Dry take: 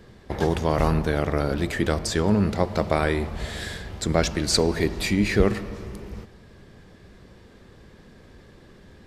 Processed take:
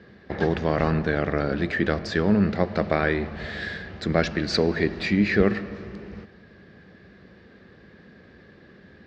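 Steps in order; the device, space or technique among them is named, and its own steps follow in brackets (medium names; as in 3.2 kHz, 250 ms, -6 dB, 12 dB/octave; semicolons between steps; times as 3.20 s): guitar cabinet (cabinet simulation 90–4500 Hz, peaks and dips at 120 Hz -5 dB, 190 Hz +3 dB, 940 Hz -6 dB, 1.7 kHz +6 dB, 3.3 kHz -4 dB)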